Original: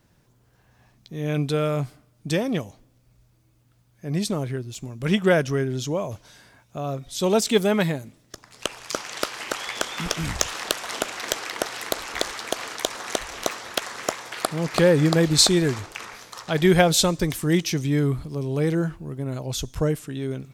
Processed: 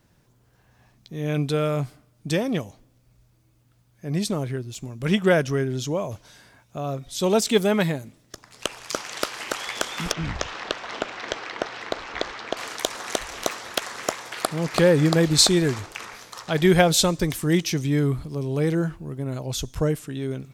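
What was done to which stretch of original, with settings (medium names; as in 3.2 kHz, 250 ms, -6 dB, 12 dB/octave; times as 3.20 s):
10.12–12.57 s: distance through air 170 m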